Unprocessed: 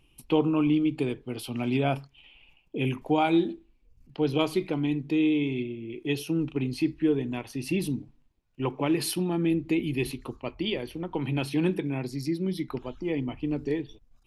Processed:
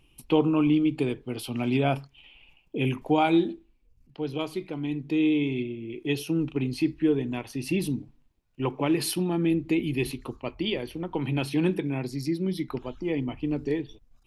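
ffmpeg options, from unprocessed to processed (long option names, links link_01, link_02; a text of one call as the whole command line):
ffmpeg -i in.wav -af "volume=8dB,afade=type=out:start_time=3.3:duration=0.92:silence=0.446684,afade=type=in:start_time=4.72:duration=0.57:silence=0.473151" out.wav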